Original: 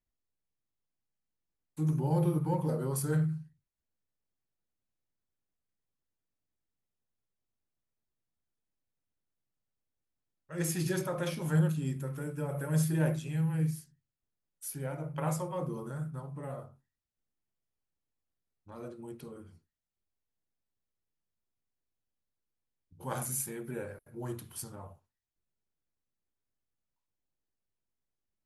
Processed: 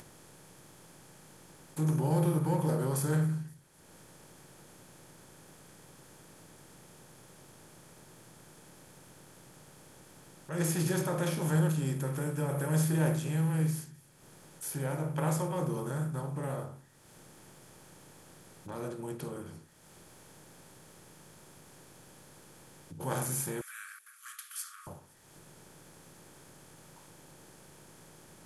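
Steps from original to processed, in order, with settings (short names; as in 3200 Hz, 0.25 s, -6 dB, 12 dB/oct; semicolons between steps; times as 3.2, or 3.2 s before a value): per-bin compression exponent 0.6; upward compressor, threshold -40 dBFS; 23.61–24.87 brick-wall FIR high-pass 1100 Hz; thin delay 0.259 s, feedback 52%, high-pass 2300 Hz, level -21 dB; gain -2 dB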